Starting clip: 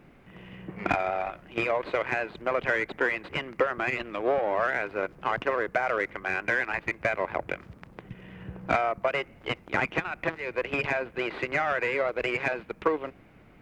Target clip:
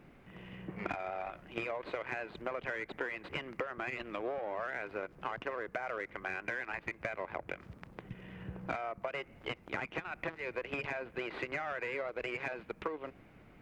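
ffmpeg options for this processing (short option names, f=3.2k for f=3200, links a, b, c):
-af "acompressor=threshold=-31dB:ratio=6,volume=-3.5dB"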